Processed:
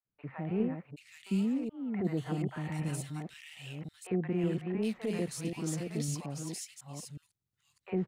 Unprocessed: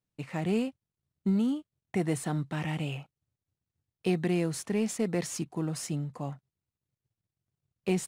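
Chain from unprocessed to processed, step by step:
delay that plays each chunk backwards 548 ms, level −5 dB
three-band delay without the direct sound mids, lows, highs 50/780 ms, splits 710/2,200 Hz
level −3.5 dB

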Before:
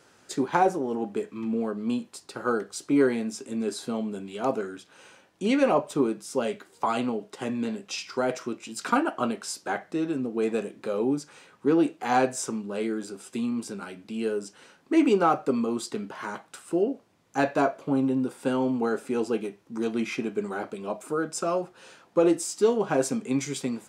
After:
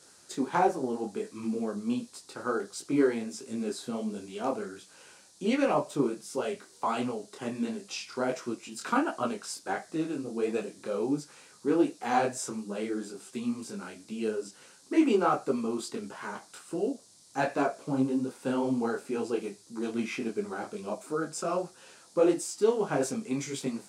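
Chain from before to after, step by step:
noise in a band 3,900–10,000 Hz −55 dBFS
micro pitch shift up and down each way 49 cents

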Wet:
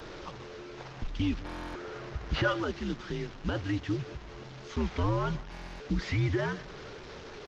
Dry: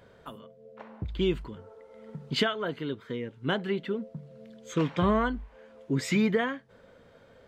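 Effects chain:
linear delta modulator 32 kbit/s, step −36.5 dBFS
single-tap delay 182 ms −21 dB
convolution reverb RT60 0.20 s, pre-delay 107 ms, DRR 37.5 dB
brickwall limiter −20 dBFS, peak gain reduction 6.5 dB
0:01.40–0:02.62: graphic EQ with 15 bands 160 Hz +6 dB, 630 Hz +5 dB, 1,600 Hz +7 dB
frequency shifter −90 Hz
buffer that repeats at 0:01.45/0:05.50, samples 1,024, times 12
Opus 20 kbit/s 48,000 Hz

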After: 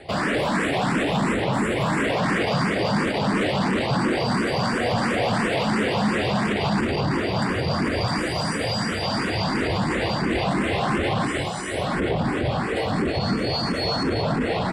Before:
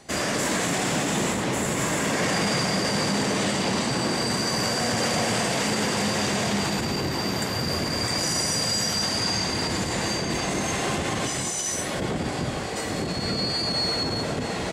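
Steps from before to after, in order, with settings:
in parallel at +0.5 dB: brickwall limiter −21.5 dBFS, peak gain reduction 8.5 dB
on the sum: moving average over 7 samples
soft clipping −18.5 dBFS, distortion −16 dB
frequency shifter mixed with the dry sound +2.9 Hz
level +5 dB

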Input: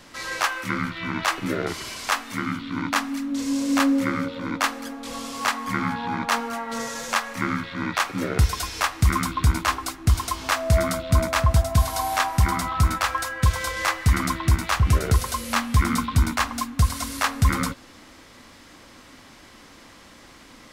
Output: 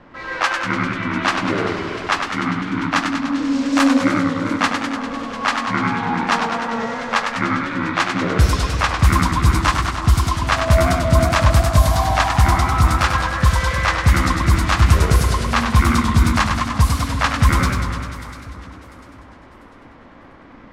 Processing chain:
low-pass that shuts in the quiet parts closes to 1,400 Hz, open at −14 dBFS
delay that swaps between a low-pass and a high-pass 348 ms, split 1,300 Hz, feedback 56%, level −11.5 dB
feedback echo with a swinging delay time 99 ms, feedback 71%, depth 146 cents, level −6 dB
level +4.5 dB

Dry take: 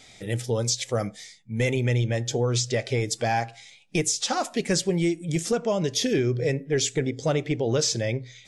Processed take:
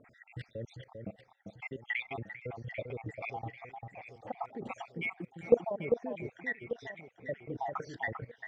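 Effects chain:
time-frequency cells dropped at random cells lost 69%
high-pass filter 75 Hz 6 dB per octave
output level in coarse steps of 21 dB
auto-filter low-pass sine 0.65 Hz 690–2,100 Hz
delay that swaps between a low-pass and a high-pass 396 ms, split 1,800 Hz, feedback 63%, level −6 dB
level +2.5 dB

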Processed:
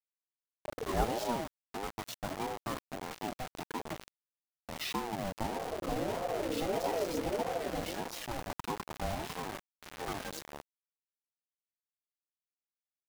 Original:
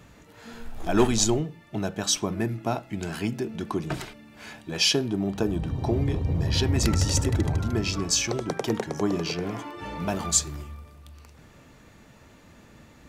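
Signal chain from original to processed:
high-frequency loss of the air 240 metres
bit reduction 5 bits
ring modulator whose carrier an LFO sweeps 500 Hz, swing 25%, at 1.6 Hz
level −7.5 dB

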